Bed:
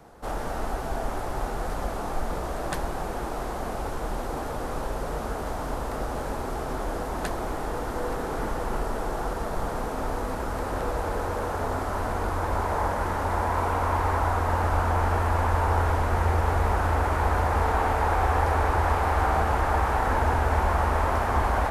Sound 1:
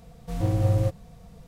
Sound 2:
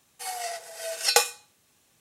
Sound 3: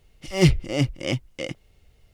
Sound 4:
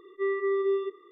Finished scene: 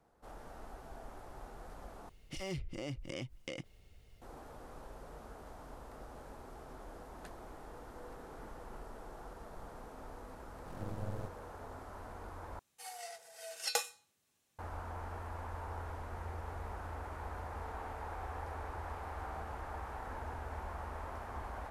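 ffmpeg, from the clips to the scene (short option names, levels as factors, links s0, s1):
-filter_complex "[0:a]volume=0.1[s0];[3:a]acompressor=threshold=0.0178:ratio=6:attack=3.2:release=140:knee=1:detection=peak[s1];[1:a]aeval=exprs='max(val(0),0)':c=same[s2];[s0]asplit=3[s3][s4][s5];[s3]atrim=end=2.094[s6];[s1]atrim=end=2.13,asetpts=PTS-STARTPTS,volume=0.708[s7];[s4]atrim=start=4.216:end=12.594[s8];[2:a]atrim=end=2,asetpts=PTS-STARTPTS,volume=0.211[s9];[s5]atrim=start=14.586[s10];[s2]atrim=end=1.47,asetpts=PTS-STARTPTS,volume=0.168,afade=t=in:d=0.004:c=hsin,afade=t=out:st=1.466:d=0.004:c=hsin,adelay=10380[s11];[s6][s7]acrossfade=d=0.004:c1=hsin:c2=hsin[s12];[s12][s8]acrossfade=d=0.004:c1=hsin:c2=hsin[s13];[s13][s9]acrossfade=d=0.004:c1=hsin:c2=hsin[s14];[s14][s10]acrossfade=d=0.004:c1=hsin:c2=hsin[s15];[s15][s11]amix=inputs=2:normalize=0"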